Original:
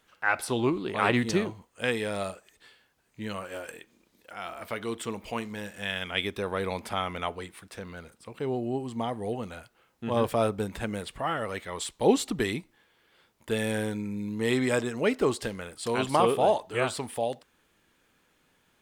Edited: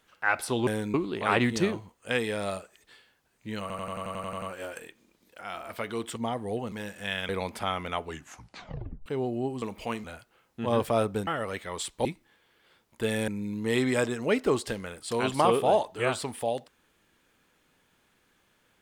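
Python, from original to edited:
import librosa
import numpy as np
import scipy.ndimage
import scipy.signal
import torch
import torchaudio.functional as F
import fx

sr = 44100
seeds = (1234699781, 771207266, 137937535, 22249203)

y = fx.edit(x, sr, fx.stutter(start_s=3.34, slice_s=0.09, count=10),
    fx.swap(start_s=5.08, length_s=0.42, other_s=8.92, other_length_s=0.56),
    fx.cut(start_s=6.07, length_s=0.52),
    fx.tape_stop(start_s=7.32, length_s=1.04),
    fx.cut(start_s=10.71, length_s=0.57),
    fx.cut(start_s=12.06, length_s=0.47),
    fx.move(start_s=13.76, length_s=0.27, to_s=0.67), tone=tone)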